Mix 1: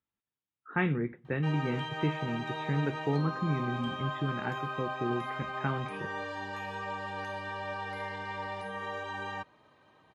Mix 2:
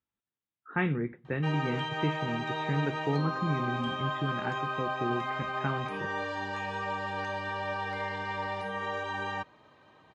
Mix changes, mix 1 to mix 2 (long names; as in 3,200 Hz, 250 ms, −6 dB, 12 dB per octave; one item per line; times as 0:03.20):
background +3.5 dB
master: add low-pass filter 8,300 Hz 24 dB per octave